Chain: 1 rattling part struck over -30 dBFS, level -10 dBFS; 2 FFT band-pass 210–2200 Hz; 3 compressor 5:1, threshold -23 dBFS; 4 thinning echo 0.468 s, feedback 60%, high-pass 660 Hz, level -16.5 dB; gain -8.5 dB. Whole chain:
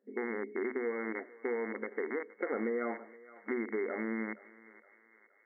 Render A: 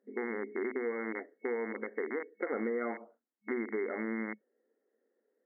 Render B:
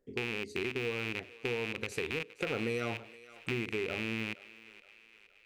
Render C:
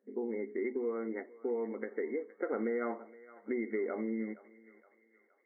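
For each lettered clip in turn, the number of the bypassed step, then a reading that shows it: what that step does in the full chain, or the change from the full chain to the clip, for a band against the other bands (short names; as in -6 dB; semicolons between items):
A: 4, momentary loudness spread change -4 LU; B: 2, 2 kHz band +6.0 dB; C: 1, 2 kHz band -7.0 dB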